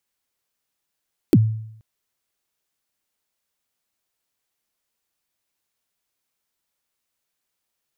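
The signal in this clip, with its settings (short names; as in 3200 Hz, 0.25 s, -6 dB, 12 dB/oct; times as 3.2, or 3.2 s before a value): kick drum length 0.48 s, from 390 Hz, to 110 Hz, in 43 ms, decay 0.72 s, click on, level -7 dB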